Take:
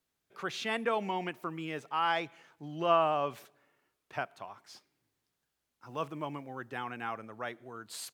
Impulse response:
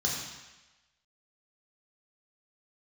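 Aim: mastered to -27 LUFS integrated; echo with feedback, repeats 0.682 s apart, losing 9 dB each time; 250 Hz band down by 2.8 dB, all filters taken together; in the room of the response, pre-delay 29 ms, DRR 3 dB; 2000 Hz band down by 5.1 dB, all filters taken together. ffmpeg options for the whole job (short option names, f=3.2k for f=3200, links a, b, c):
-filter_complex "[0:a]equalizer=f=250:t=o:g=-4,equalizer=f=2k:t=o:g=-7,aecho=1:1:682|1364|2046|2728:0.355|0.124|0.0435|0.0152,asplit=2[a][b];[1:a]atrim=start_sample=2205,adelay=29[c];[b][c]afir=irnorm=-1:irlink=0,volume=-10.5dB[d];[a][d]amix=inputs=2:normalize=0,volume=7.5dB"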